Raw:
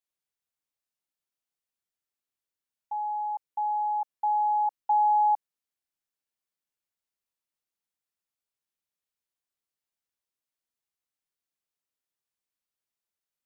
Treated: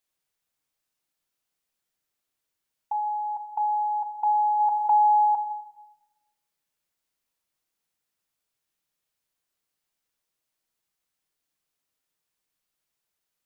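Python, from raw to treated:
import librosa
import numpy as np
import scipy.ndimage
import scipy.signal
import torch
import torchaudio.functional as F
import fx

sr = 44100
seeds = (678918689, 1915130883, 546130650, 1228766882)

y = fx.dynamic_eq(x, sr, hz=680.0, q=1.8, threshold_db=-39.0, ratio=4.0, max_db=-6)
y = fx.room_shoebox(y, sr, seeds[0], volume_m3=790.0, walls='mixed', distance_m=0.53)
y = fx.env_flatten(y, sr, amount_pct=50, at=(4.59, 5.24), fade=0.02)
y = y * librosa.db_to_amplitude(7.5)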